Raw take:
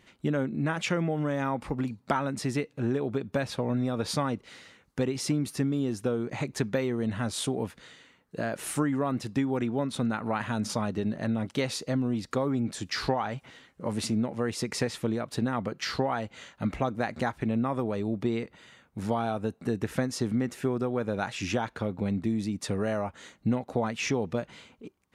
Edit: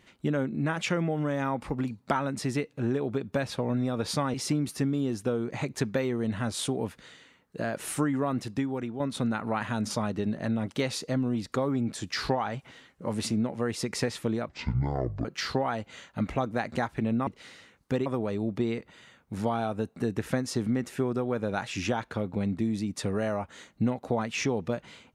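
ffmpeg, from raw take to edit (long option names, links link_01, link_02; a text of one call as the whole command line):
ffmpeg -i in.wav -filter_complex "[0:a]asplit=7[link_01][link_02][link_03][link_04][link_05][link_06][link_07];[link_01]atrim=end=4.342[link_08];[link_02]atrim=start=5.128:end=9.79,asetpts=PTS-STARTPTS,afade=type=out:start_time=4.042:duration=0.62:silence=0.421697[link_09];[link_03]atrim=start=9.79:end=15.284,asetpts=PTS-STARTPTS,afade=type=in:duration=0.004:curve=hsin:silence=0.421697[link_10];[link_04]atrim=start=15.28:end=15.69,asetpts=PTS-STARTPTS,asetrate=23814,aresample=44100,atrim=end_sample=33483,asetpts=PTS-STARTPTS[link_11];[link_05]atrim=start=15.686:end=17.712[link_12];[link_06]atrim=start=4.338:end=5.132[link_13];[link_07]atrim=start=17.708[link_14];[link_09][link_10]concat=n=2:v=0:a=1[link_15];[link_08][link_15]acrossfade=duration=0.004:curve1=hsin:curve2=hsin[link_16];[link_16][link_11]acrossfade=duration=0.004:curve1=hsin:curve2=hsin[link_17];[link_17][link_12]acrossfade=duration=0.004:curve1=hsin:curve2=hsin[link_18];[link_18][link_13]acrossfade=duration=0.004:curve1=hsin:curve2=hsin[link_19];[link_19][link_14]acrossfade=duration=0.004:curve1=hsin:curve2=hsin" out.wav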